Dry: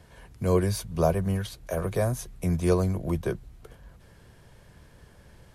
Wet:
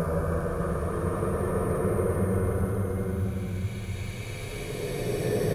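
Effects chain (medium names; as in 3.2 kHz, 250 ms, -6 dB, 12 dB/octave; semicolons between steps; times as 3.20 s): resampled via 32 kHz; Paulstretch 34×, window 0.10 s, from 1.80 s; crackle 260 per s -49 dBFS; trim +2 dB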